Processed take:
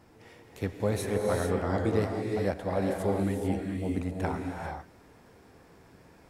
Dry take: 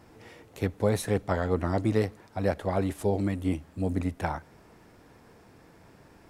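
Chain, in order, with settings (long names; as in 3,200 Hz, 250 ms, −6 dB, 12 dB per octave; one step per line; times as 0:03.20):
reverb whose tail is shaped and stops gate 470 ms rising, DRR 0.5 dB
level −3.5 dB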